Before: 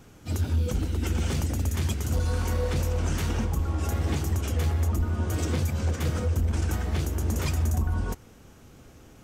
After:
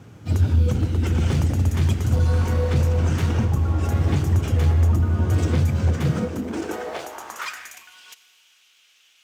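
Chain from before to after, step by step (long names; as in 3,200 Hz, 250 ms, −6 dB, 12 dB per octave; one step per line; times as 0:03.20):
high-shelf EQ 5,700 Hz −10 dB
four-comb reverb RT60 2.5 s, DRR 13 dB
high-pass filter sweep 100 Hz → 3,000 Hz, 0:05.89–0:07.95
level +4 dB
IMA ADPCM 176 kbit/s 44,100 Hz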